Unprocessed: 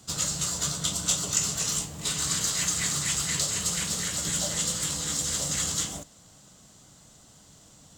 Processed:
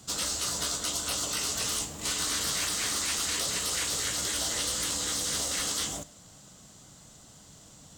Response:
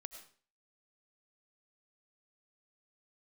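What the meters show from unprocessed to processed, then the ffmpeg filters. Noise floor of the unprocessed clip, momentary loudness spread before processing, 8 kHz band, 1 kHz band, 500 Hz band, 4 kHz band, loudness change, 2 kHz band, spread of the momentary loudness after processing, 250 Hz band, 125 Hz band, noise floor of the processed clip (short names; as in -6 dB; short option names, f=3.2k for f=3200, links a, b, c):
-55 dBFS, 3 LU, -3.5 dB, +1.5 dB, +0.5 dB, 0.0 dB, -2.0 dB, +0.5 dB, 2 LU, -4.0 dB, -8.5 dB, -53 dBFS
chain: -filter_complex "[0:a]asplit=2[a][b];[1:a]atrim=start_sample=2205[c];[b][c]afir=irnorm=-1:irlink=0,volume=-9.5dB[d];[a][d]amix=inputs=2:normalize=0,afftfilt=real='re*lt(hypot(re,im),0.0891)':imag='im*lt(hypot(re,im),0.0891)':win_size=1024:overlap=0.75,acrusher=bits=9:mode=log:mix=0:aa=0.000001"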